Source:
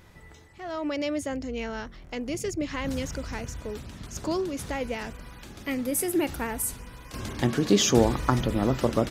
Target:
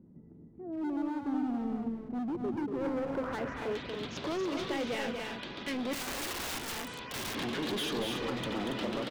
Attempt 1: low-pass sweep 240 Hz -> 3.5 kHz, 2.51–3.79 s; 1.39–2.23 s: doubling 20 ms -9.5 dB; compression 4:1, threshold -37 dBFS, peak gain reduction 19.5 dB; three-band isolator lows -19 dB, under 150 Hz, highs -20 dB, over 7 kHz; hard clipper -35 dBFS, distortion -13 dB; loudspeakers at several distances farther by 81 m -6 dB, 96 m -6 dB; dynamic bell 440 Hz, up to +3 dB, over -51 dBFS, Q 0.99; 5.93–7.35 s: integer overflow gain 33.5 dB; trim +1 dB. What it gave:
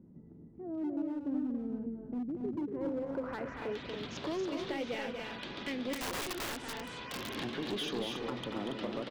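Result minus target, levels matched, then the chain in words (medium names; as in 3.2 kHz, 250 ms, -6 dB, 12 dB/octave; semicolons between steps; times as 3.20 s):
compression: peak gain reduction +7 dB
low-pass sweep 240 Hz -> 3.5 kHz, 2.51–3.79 s; 1.39–2.23 s: doubling 20 ms -9.5 dB; compression 4:1, threshold -27.5 dBFS, peak gain reduction 12 dB; three-band isolator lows -19 dB, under 150 Hz, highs -20 dB, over 7 kHz; hard clipper -35 dBFS, distortion -6 dB; loudspeakers at several distances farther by 81 m -6 dB, 96 m -6 dB; dynamic bell 440 Hz, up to +3 dB, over -51 dBFS, Q 0.99; 5.93–7.35 s: integer overflow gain 33.5 dB; trim +1 dB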